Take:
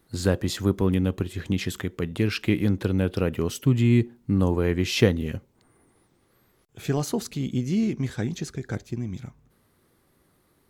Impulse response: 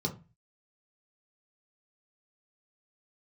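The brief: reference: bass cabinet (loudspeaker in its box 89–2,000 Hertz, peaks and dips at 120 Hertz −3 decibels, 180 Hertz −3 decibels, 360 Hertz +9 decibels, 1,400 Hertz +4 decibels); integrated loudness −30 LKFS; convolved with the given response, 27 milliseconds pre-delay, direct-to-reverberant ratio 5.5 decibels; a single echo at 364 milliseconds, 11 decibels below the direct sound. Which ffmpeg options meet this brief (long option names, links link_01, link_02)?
-filter_complex "[0:a]aecho=1:1:364:0.282,asplit=2[link_01][link_02];[1:a]atrim=start_sample=2205,adelay=27[link_03];[link_02][link_03]afir=irnorm=-1:irlink=0,volume=-10dB[link_04];[link_01][link_04]amix=inputs=2:normalize=0,highpass=frequency=89:width=0.5412,highpass=frequency=89:width=1.3066,equalizer=frequency=120:width_type=q:width=4:gain=-3,equalizer=frequency=180:width_type=q:width=4:gain=-3,equalizer=frequency=360:width_type=q:width=4:gain=9,equalizer=frequency=1400:width_type=q:width=4:gain=4,lowpass=frequency=2000:width=0.5412,lowpass=frequency=2000:width=1.3066,volume=-10.5dB"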